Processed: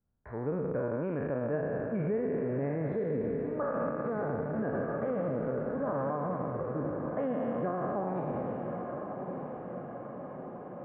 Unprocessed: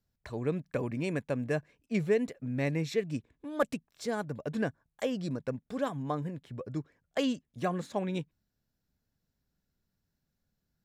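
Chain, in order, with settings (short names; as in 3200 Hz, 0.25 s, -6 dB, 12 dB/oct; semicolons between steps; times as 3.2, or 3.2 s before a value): spectral trails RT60 2.65 s; inverse Chebyshev low-pass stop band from 7500 Hz, stop band 80 dB; on a send: diffused feedback echo 1.203 s, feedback 64%, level -9 dB; on the sum: limiter -21.5 dBFS, peak gain reduction 9 dB; gain -2.5 dB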